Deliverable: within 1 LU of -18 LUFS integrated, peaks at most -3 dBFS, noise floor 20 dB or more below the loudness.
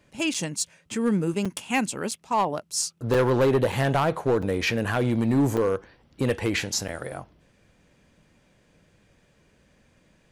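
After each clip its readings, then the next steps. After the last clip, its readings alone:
clipped samples 1.1%; clipping level -16.0 dBFS; dropouts 8; longest dropout 5.4 ms; loudness -25.5 LUFS; peak level -16.0 dBFS; loudness target -18.0 LUFS
-> clip repair -16 dBFS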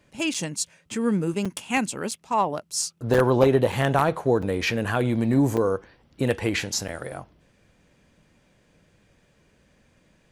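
clipped samples 0.0%; dropouts 8; longest dropout 5.4 ms
-> interpolate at 0.34/1.45/2.11/3.14/3.72/4.42/5.57/6.88 s, 5.4 ms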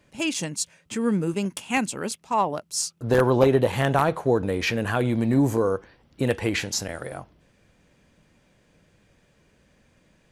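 dropouts 0; loudness -24.5 LUFS; peak level -7.0 dBFS; loudness target -18.0 LUFS
-> trim +6.5 dB; peak limiter -3 dBFS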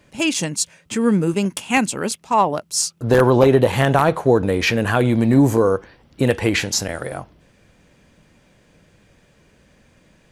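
loudness -18.0 LUFS; peak level -3.0 dBFS; noise floor -56 dBFS

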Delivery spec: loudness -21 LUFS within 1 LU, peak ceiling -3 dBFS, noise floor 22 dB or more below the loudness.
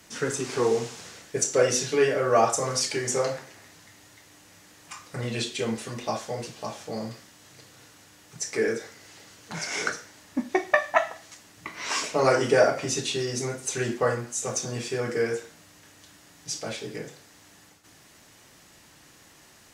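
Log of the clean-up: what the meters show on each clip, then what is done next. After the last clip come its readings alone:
tick rate 24 per s; loudness -27.0 LUFS; peak level -5.0 dBFS; loudness target -21.0 LUFS
-> de-click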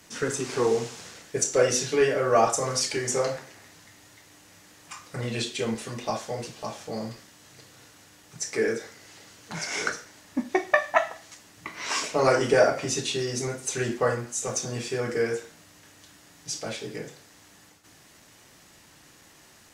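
tick rate 0.10 per s; loudness -27.0 LUFS; peak level -5.0 dBFS; loudness target -21.0 LUFS
-> trim +6 dB; peak limiter -3 dBFS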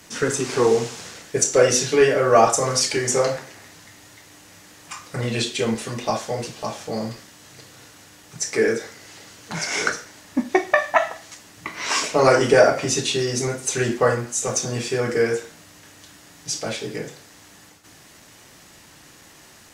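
loudness -21.0 LUFS; peak level -3.0 dBFS; noise floor -49 dBFS

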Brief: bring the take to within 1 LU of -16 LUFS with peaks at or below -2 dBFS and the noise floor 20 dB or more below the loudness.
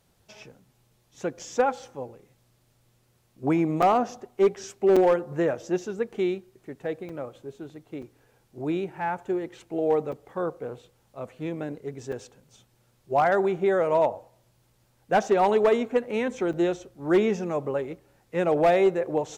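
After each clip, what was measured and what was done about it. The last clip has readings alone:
clipped samples 0.5%; clipping level -14.0 dBFS; dropouts 8; longest dropout 5.0 ms; loudness -25.5 LUFS; peak level -14.0 dBFS; loudness target -16.0 LUFS
-> clip repair -14 dBFS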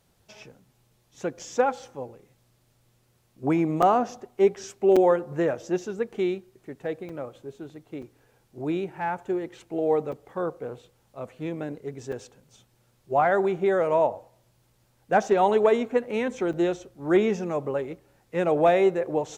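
clipped samples 0.0%; dropouts 8; longest dropout 5.0 ms
-> interpolate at 1.39/3.82/4.96/7.09/8.02/10.12/12.12/16.53 s, 5 ms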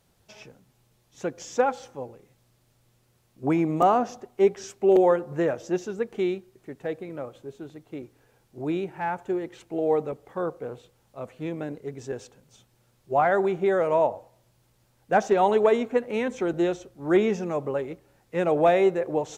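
dropouts 0; loudness -25.5 LUFS; peak level -8.5 dBFS; loudness target -16.0 LUFS
-> trim +9.5 dB; peak limiter -2 dBFS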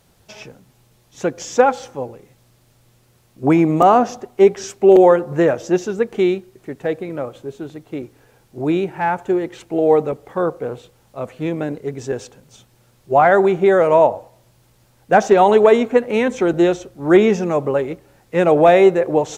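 loudness -16.0 LUFS; peak level -2.0 dBFS; noise floor -56 dBFS

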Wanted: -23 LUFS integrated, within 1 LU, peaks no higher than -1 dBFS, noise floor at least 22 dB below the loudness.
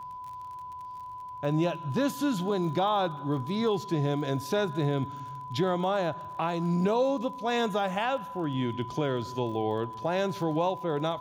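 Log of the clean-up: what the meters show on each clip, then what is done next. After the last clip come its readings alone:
tick rate 33 per s; steady tone 1 kHz; tone level -38 dBFS; loudness -29.5 LUFS; peak level -16.0 dBFS; loudness target -23.0 LUFS
-> de-click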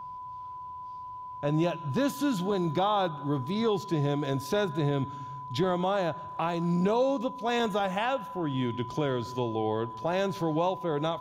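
tick rate 0 per s; steady tone 1 kHz; tone level -38 dBFS
-> band-stop 1 kHz, Q 30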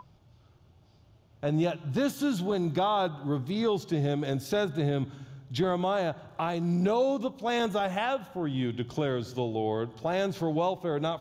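steady tone not found; loudness -29.5 LUFS; peak level -16.5 dBFS; loudness target -23.0 LUFS
-> trim +6.5 dB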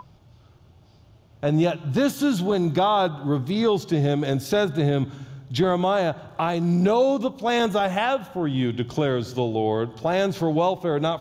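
loudness -23.0 LUFS; peak level -10.0 dBFS; noise floor -53 dBFS

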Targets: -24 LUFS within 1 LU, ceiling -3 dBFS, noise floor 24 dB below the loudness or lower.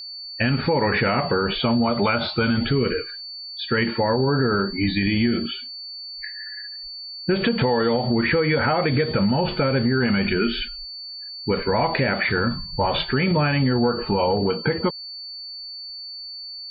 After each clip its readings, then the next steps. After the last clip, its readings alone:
steady tone 4.5 kHz; tone level -33 dBFS; loudness -22.0 LUFS; peak level -8.0 dBFS; loudness target -24.0 LUFS
-> band-stop 4.5 kHz, Q 30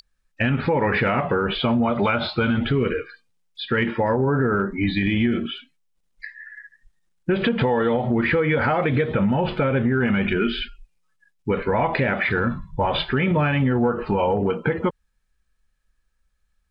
steady tone not found; loudness -22.0 LUFS; peak level -8.0 dBFS; loudness target -24.0 LUFS
-> trim -2 dB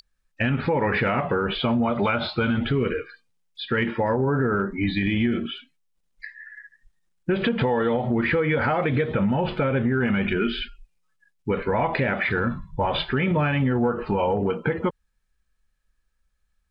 loudness -24.0 LUFS; peak level -10.0 dBFS; noise floor -71 dBFS

